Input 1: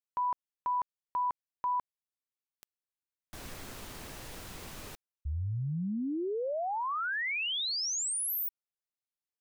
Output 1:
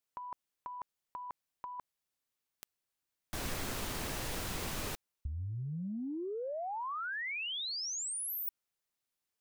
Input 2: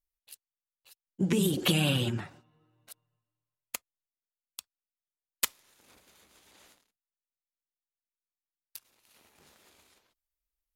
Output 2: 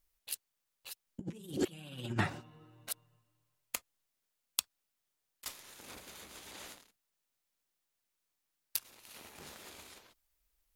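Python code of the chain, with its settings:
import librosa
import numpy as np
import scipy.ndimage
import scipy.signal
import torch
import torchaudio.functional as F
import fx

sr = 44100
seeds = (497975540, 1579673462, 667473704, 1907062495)

y = fx.over_compress(x, sr, threshold_db=-37.0, ratio=-0.5)
y = y * librosa.db_to_amplitude(1.0)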